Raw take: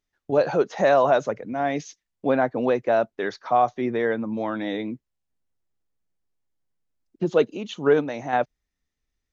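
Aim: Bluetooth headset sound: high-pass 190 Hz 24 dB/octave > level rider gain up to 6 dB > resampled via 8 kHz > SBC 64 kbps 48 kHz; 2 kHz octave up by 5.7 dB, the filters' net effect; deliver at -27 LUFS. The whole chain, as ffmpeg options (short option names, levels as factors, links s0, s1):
-af "highpass=f=190:w=0.5412,highpass=f=190:w=1.3066,equalizer=f=2000:t=o:g=7.5,dynaudnorm=m=2,aresample=8000,aresample=44100,volume=0.631" -ar 48000 -c:a sbc -b:a 64k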